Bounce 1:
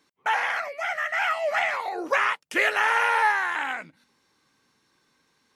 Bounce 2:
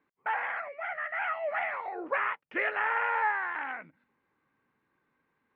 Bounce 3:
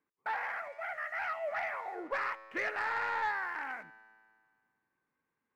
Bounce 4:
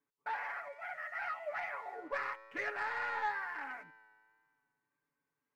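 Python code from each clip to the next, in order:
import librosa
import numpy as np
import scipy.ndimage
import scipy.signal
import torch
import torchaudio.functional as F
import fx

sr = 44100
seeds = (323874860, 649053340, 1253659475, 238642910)

y1 = scipy.signal.sosfilt(scipy.signal.butter(4, 2300.0, 'lowpass', fs=sr, output='sos'), x)
y1 = y1 * 10.0 ** (-6.5 / 20.0)
y2 = fx.leveller(y1, sr, passes=1)
y2 = fx.comb_fb(y2, sr, f0_hz=110.0, decay_s=1.9, harmonics='all', damping=0.0, mix_pct=60)
y3 = y2 + 0.84 * np.pad(y2, (int(7.0 * sr / 1000.0), 0))[:len(y2)]
y3 = fx.wow_flutter(y3, sr, seeds[0], rate_hz=2.1, depth_cents=26.0)
y3 = y3 * 10.0 ** (-6.0 / 20.0)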